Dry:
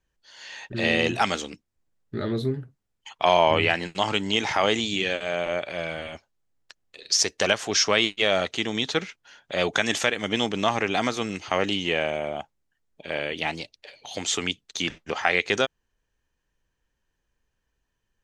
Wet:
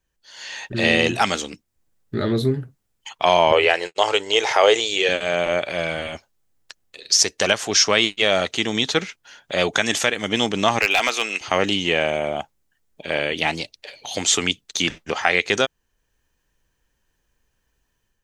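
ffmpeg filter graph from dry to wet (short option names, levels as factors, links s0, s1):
-filter_complex "[0:a]asettb=1/sr,asplit=3[s0][s1][s2];[s0]atrim=end=3.524[s3];[s1]atrim=start=3.52:end=5.09,asetpts=PTS-STARTPTS,afade=t=in:d=0.004:c=qsin,afade=t=out:st=1.566:d=0.004:c=qsin,lowshelf=f=320:t=q:w=3:g=-11.5,agate=range=0.0224:threshold=0.0224:ratio=3:release=100:detection=peak[s4];[s2]atrim=start=5.086[s5];[s3][s4]acrossfade=d=0.004:c1=hsin:c2=qsin[s6];[s6][s5]acrossfade=d=0.004:c1=qsin:c2=hsin,asettb=1/sr,asplit=3[s7][s8][s9];[s7]atrim=end=10.794[s10];[s8]atrim=start=10.79:end=11.41,asetpts=PTS-STARTPTS,afade=t=in:d=0.004:c=qsin,afade=t=out:st=0.616:d=0.004:c=qsin,highpass=500,equalizer=f=2600:w=3:g=10,aeval=exprs='clip(val(0),-1,0.188)':c=same[s11];[s9]atrim=start=11.406[s12];[s10][s11]acrossfade=d=0.004:c1=hsin:c2=qsin[s13];[s13][s12]acrossfade=d=0.004:c1=qsin:c2=hsin,highshelf=f=7600:g=8,dynaudnorm=f=190:g=3:m=2"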